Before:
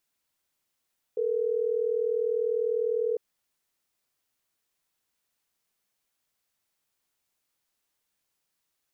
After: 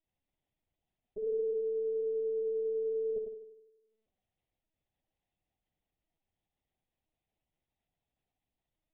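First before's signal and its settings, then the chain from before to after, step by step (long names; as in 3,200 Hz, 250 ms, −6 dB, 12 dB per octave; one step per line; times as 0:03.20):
call progress tone ringback tone, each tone −27 dBFS
drawn EQ curve 230 Hz 0 dB, 350 Hz +8 dB, 510 Hz −19 dB, 770 Hz +4 dB, 1,200 Hz −24 dB, 1,800 Hz −10 dB
flutter between parallel walls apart 9 metres, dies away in 1 s
linear-prediction vocoder at 8 kHz pitch kept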